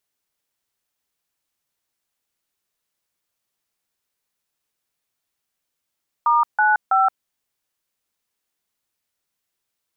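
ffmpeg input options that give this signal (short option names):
-f lavfi -i "aevalsrc='0.158*clip(min(mod(t,0.326),0.173-mod(t,0.326))/0.002,0,1)*(eq(floor(t/0.326),0)*(sin(2*PI*941*mod(t,0.326))+sin(2*PI*1209*mod(t,0.326)))+eq(floor(t/0.326),1)*(sin(2*PI*852*mod(t,0.326))+sin(2*PI*1477*mod(t,0.326)))+eq(floor(t/0.326),2)*(sin(2*PI*770*mod(t,0.326))+sin(2*PI*1336*mod(t,0.326))))':d=0.978:s=44100"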